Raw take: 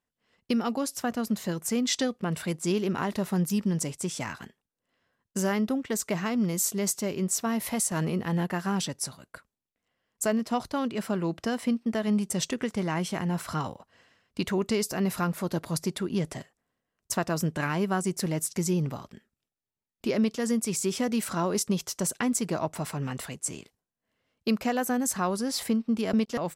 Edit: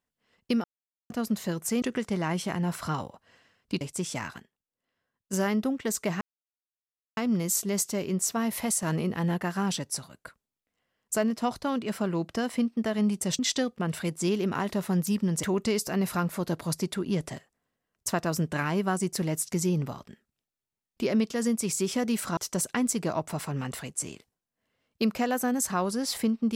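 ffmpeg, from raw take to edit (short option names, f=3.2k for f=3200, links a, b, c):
-filter_complex "[0:a]asplit=11[a][b][c][d][e][f][g][h][i][j][k];[a]atrim=end=0.64,asetpts=PTS-STARTPTS,afade=t=out:st=0.636:d=0.004:c=hsin[l];[b]atrim=start=0.64:end=1.1,asetpts=PTS-STARTPTS,volume=0[m];[c]atrim=start=1.1:end=1.822,asetpts=PTS-STARTPTS,afade=t=in:d=0.004:c=hsin[n];[d]atrim=start=12.478:end=14.472[o];[e]atrim=start=3.858:end=4.432[p];[f]atrim=start=4.428:end=5.382,asetpts=PTS-STARTPTS,volume=-7dB[q];[g]atrim=start=5.378:end=6.26,asetpts=PTS-STARTPTS,afade=t=out:st=0.878:d=0.004:c=hsin,apad=pad_dur=0.96[r];[h]atrim=start=6.26:end=12.482,asetpts=PTS-STARTPTS,afade=t=in:d=0.004:c=hsin[s];[i]atrim=start=1.818:end=3.862[t];[j]atrim=start=14.468:end=21.412[u];[k]atrim=start=21.828[v];[l][m][n]concat=n=3:v=0:a=1[w];[w][o]acrossfade=d=0.004:c1=hsin:c2=hsin[x];[x][p]acrossfade=d=0.004:c1=hsin:c2=hsin[y];[y][q]acrossfade=d=0.004:c1=hsin:c2=hsin[z];[r][s]concat=n=2:v=0:a=1[aa];[z][aa]acrossfade=d=0.004:c1=hsin:c2=hsin[ab];[ab][t]acrossfade=d=0.004:c1=hsin:c2=hsin[ac];[ac][u]acrossfade=d=0.004:c1=hsin:c2=hsin[ad];[ad][v]acrossfade=d=0.004:c1=hsin:c2=hsin"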